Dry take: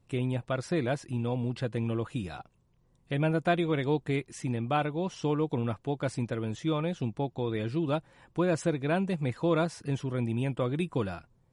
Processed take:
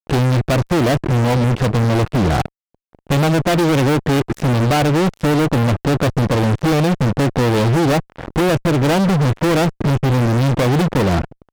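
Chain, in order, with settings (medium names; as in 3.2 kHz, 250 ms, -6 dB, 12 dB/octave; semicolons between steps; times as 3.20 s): local Wiener filter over 41 samples; compression 16:1, threshold -37 dBFS, peak gain reduction 17 dB; fuzz box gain 57 dB, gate -59 dBFS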